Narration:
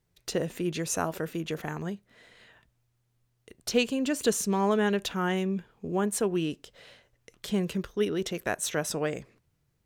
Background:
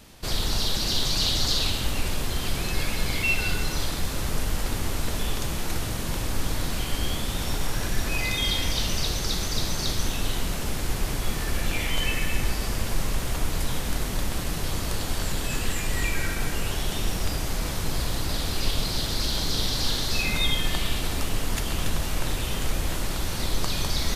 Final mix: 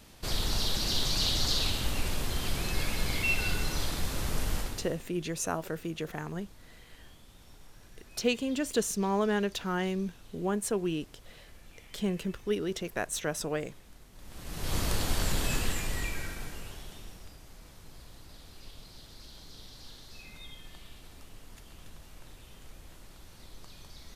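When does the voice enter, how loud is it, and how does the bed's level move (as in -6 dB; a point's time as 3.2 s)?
4.50 s, -3.0 dB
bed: 4.58 s -4.5 dB
5.11 s -27 dB
14.12 s -27 dB
14.76 s -1.5 dB
15.49 s -1.5 dB
17.37 s -23.5 dB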